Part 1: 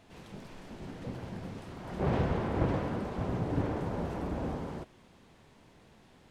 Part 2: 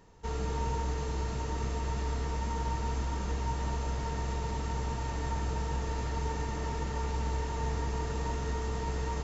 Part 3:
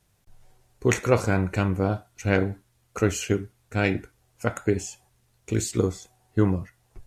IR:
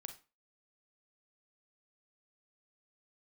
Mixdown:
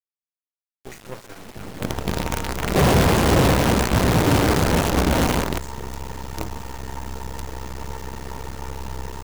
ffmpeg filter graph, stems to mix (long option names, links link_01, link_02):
-filter_complex "[0:a]acontrast=71,asoftclip=type=hard:threshold=-21dB,dynaudnorm=framelen=380:gausssize=5:maxgain=10.5dB,adelay=750,volume=-3dB,asplit=2[link_01][link_02];[link_02]volume=-21.5dB[link_03];[1:a]adelay=1650,volume=2.5dB,asplit=2[link_04][link_05];[link_05]volume=-6.5dB[link_06];[2:a]asplit=2[link_07][link_08];[link_08]adelay=6.2,afreqshift=-0.47[link_09];[link_07][link_09]amix=inputs=2:normalize=1,volume=-10dB[link_10];[3:a]atrim=start_sample=2205[link_11];[link_03][link_06]amix=inputs=2:normalize=0[link_12];[link_12][link_11]afir=irnorm=-1:irlink=0[link_13];[link_01][link_04][link_10][link_13]amix=inputs=4:normalize=0,acrusher=bits=4:dc=4:mix=0:aa=0.000001"